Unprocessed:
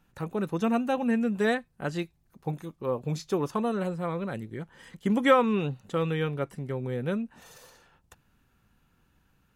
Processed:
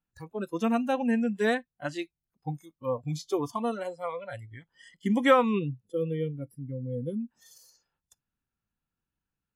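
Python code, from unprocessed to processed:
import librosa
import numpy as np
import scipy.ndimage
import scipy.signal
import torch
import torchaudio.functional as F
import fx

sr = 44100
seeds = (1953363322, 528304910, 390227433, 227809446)

y = fx.spec_box(x, sr, start_s=5.59, length_s=1.61, low_hz=520.0, high_hz=9500.0, gain_db=-11)
y = fx.noise_reduce_blind(y, sr, reduce_db=22)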